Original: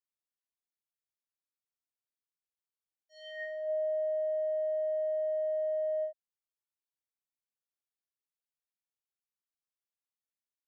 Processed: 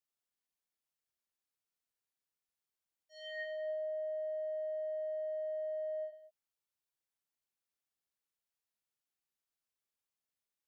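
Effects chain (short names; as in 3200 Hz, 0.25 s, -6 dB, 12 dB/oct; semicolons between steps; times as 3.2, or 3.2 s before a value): compressor 4:1, threshold -37 dBFS, peak gain reduction 6 dB; non-linear reverb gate 0.19 s rising, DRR 9.5 dB; gain +1 dB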